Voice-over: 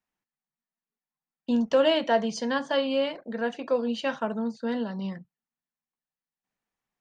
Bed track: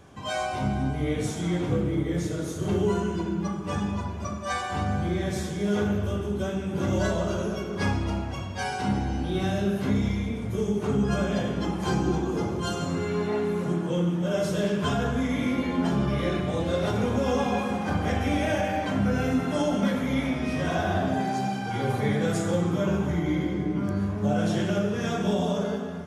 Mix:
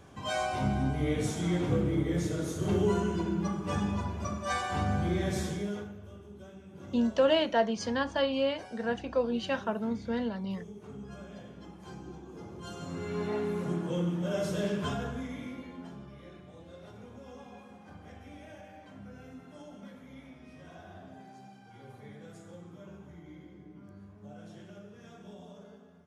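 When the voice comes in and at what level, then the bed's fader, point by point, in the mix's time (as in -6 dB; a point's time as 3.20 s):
5.45 s, -3.0 dB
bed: 5.53 s -2.5 dB
5.93 s -20 dB
12.25 s -20 dB
13.25 s -5.5 dB
14.75 s -5.5 dB
16.14 s -23.5 dB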